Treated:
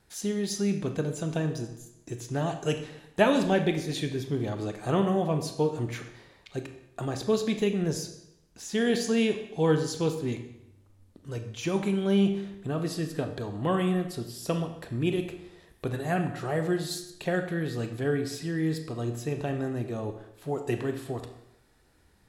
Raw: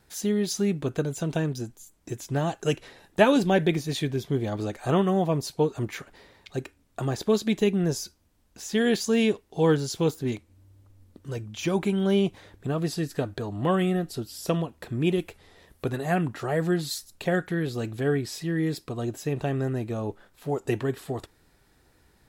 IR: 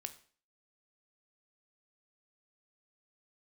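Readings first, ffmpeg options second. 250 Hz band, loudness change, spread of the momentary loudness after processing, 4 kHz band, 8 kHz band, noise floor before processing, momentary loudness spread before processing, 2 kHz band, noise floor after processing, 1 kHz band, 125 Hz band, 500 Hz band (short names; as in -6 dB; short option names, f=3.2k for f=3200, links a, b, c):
-2.0 dB, -2.5 dB, 13 LU, -2.5 dB, -2.5 dB, -64 dBFS, 13 LU, -2.5 dB, -62 dBFS, -2.5 dB, -2.5 dB, -2.5 dB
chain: -filter_complex "[1:a]atrim=start_sample=2205,asetrate=23373,aresample=44100[a];[0:a][a]afir=irnorm=-1:irlink=0,volume=-2.5dB"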